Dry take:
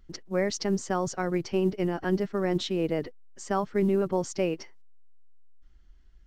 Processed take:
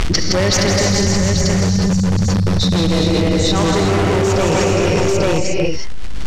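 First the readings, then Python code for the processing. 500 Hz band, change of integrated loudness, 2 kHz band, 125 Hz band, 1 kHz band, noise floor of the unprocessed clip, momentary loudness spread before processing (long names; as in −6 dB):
+11.5 dB, +13.0 dB, +16.0 dB, +19.5 dB, +12.5 dB, −54 dBFS, 6 LU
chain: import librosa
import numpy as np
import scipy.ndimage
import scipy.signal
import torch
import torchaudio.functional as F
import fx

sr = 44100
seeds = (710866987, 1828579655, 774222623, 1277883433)

p1 = fx.octave_divider(x, sr, octaves=1, level_db=0.0)
p2 = fx.spec_erase(p1, sr, start_s=0.72, length_s=2.03, low_hz=230.0, high_hz=3500.0)
p3 = fx.high_shelf(p2, sr, hz=2500.0, db=9.5)
p4 = fx.rev_gated(p3, sr, seeds[0], gate_ms=390, shape='rising', drr_db=1.5)
p5 = (np.mod(10.0 ** (18.5 / 20.0) * p4 + 1.0, 2.0) - 1.0) / 10.0 ** (18.5 / 20.0)
p6 = p4 + (p5 * 10.0 ** (-3.5 / 20.0))
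p7 = fx.dmg_crackle(p6, sr, seeds[1], per_s=150.0, level_db=-39.0)
p8 = fx.vibrato(p7, sr, rate_hz=5.6, depth_cents=9.5)
p9 = fx.auto_swell(p8, sr, attack_ms=117.0)
p10 = fx.air_absorb(p9, sr, metres=75.0)
p11 = p10 + fx.echo_multitap(p10, sr, ms=(70, 161, 165, 411, 424, 843), db=(-14.5, -9.5, -4.0, -7.0, -18.5, -3.5), dry=0)
p12 = fx.env_flatten(p11, sr, amount_pct=100)
y = p12 * 10.0 ** (1.5 / 20.0)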